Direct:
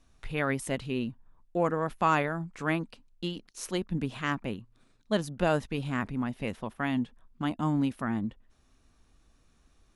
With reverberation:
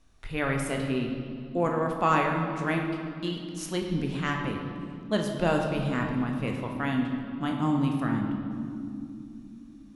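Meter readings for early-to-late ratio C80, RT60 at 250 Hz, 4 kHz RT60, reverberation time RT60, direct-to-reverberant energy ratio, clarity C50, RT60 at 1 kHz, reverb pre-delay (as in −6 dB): 5.0 dB, 4.5 s, 1.8 s, 2.7 s, 1.5 dB, 4.0 dB, 2.2 s, 20 ms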